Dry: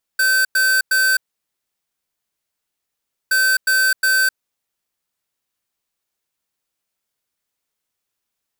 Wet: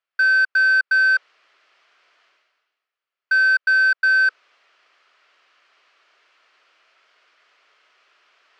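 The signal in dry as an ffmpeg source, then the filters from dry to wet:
-f lavfi -i "aevalsrc='0.168*(2*lt(mod(1540*t,1),0.5)-1)*clip(min(mod(mod(t,3.12),0.36),0.26-mod(mod(t,3.12),0.36))/0.005,0,1)*lt(mod(t,3.12),1.08)':d=6.24:s=44100"
-af "highpass=f=450:w=0.5412,highpass=f=450:w=1.3066,equalizer=f=500:t=q:w=4:g=-6,equalizer=f=850:t=q:w=4:g=-8,equalizer=f=1.3k:t=q:w=4:g=4,equalizer=f=3.7k:t=q:w=4:g=-7,lowpass=f=3.8k:w=0.5412,lowpass=f=3.8k:w=1.3066,areverse,acompressor=mode=upward:threshold=-38dB:ratio=2.5,areverse"

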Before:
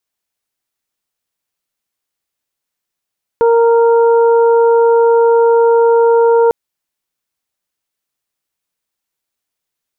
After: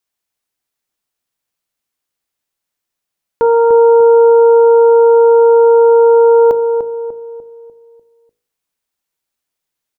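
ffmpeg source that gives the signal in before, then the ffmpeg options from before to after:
-f lavfi -i "aevalsrc='0.447*sin(2*PI*464*t)+0.178*sin(2*PI*928*t)+0.0473*sin(2*PI*1392*t)':d=3.1:s=44100"
-filter_complex "[0:a]bandreject=f=53.62:t=h:w=4,bandreject=f=107.24:t=h:w=4,bandreject=f=160.86:t=h:w=4,bandreject=f=214.48:t=h:w=4,bandreject=f=268.1:t=h:w=4,bandreject=f=321.72:t=h:w=4,bandreject=f=375.34:t=h:w=4,bandreject=f=428.96:t=h:w=4,bandreject=f=482.58:t=h:w=4,bandreject=f=536.2:t=h:w=4,bandreject=f=589.82:t=h:w=4,bandreject=f=643.44:t=h:w=4,asplit=2[a][b];[b]adelay=297,lowpass=f=880:p=1,volume=-5dB,asplit=2[c][d];[d]adelay=297,lowpass=f=880:p=1,volume=0.49,asplit=2[e][f];[f]adelay=297,lowpass=f=880:p=1,volume=0.49,asplit=2[g][h];[h]adelay=297,lowpass=f=880:p=1,volume=0.49,asplit=2[i][j];[j]adelay=297,lowpass=f=880:p=1,volume=0.49,asplit=2[k][l];[l]adelay=297,lowpass=f=880:p=1,volume=0.49[m];[c][e][g][i][k][m]amix=inputs=6:normalize=0[n];[a][n]amix=inputs=2:normalize=0"

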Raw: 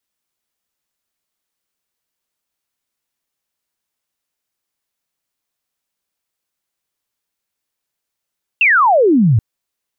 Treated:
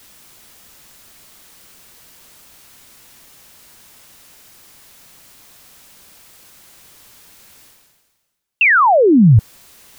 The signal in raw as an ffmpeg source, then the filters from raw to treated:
-f lavfi -i "aevalsrc='0.398*clip(t/0.002,0,1)*clip((0.78-t)/0.002,0,1)*sin(2*PI*2800*0.78/log(100/2800)*(exp(log(100/2800)*t/0.78)-1))':d=0.78:s=44100"
-af "bass=f=250:g=4,treble=f=4k:g=0,areverse,acompressor=mode=upward:threshold=-19dB:ratio=2.5,areverse"

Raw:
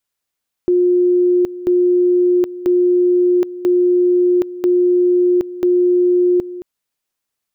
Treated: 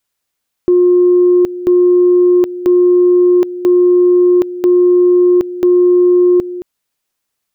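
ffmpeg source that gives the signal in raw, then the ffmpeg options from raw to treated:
-f lavfi -i "aevalsrc='pow(10,(-10-15.5*gte(mod(t,0.99),0.77))/20)*sin(2*PI*357*t)':d=5.94:s=44100"
-af "acontrast=34"

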